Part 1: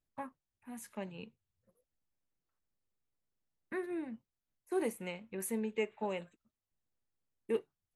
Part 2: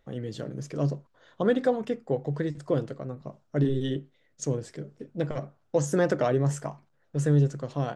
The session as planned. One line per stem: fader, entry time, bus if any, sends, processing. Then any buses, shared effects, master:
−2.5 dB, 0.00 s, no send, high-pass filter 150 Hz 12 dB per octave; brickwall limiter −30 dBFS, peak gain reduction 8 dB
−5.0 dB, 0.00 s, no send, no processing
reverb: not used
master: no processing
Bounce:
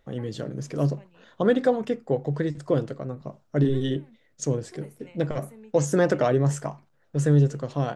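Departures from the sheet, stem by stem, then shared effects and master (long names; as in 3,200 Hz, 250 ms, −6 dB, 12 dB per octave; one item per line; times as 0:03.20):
stem 1 −2.5 dB → −9.5 dB
stem 2 −5.0 dB → +3.0 dB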